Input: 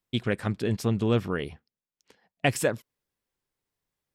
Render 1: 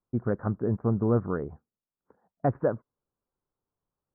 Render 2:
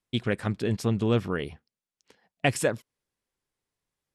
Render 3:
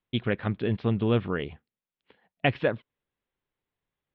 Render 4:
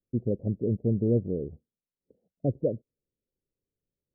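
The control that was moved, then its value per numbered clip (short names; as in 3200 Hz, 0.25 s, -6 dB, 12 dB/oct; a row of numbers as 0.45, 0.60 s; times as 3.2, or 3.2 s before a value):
steep low-pass, frequency: 1400, 12000, 3700, 570 Hz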